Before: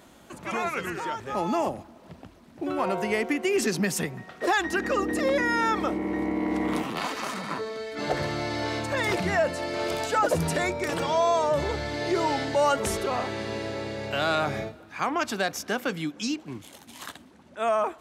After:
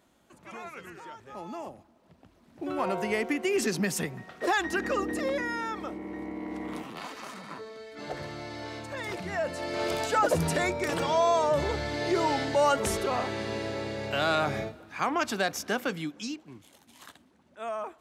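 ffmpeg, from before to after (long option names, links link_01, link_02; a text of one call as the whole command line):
ffmpeg -i in.wav -af "volume=6dB,afade=type=in:start_time=2.17:duration=0.64:silence=0.298538,afade=type=out:start_time=4.86:duration=0.82:silence=0.446684,afade=type=in:start_time=9.28:duration=0.55:silence=0.375837,afade=type=out:start_time=15.76:duration=0.71:silence=0.354813" out.wav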